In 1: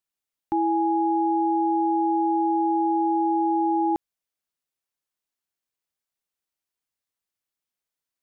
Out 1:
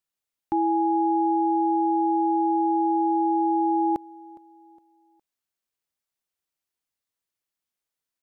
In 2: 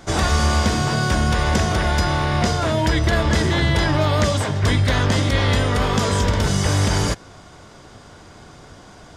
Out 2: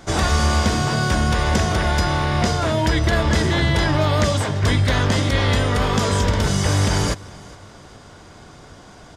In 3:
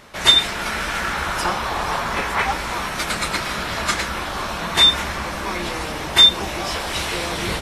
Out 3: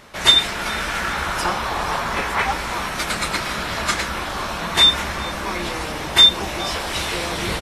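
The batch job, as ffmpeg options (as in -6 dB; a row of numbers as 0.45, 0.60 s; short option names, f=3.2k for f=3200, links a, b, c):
-af "aecho=1:1:412|824|1236:0.075|0.0285|0.0108"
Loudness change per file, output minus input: 0.0, 0.0, 0.0 LU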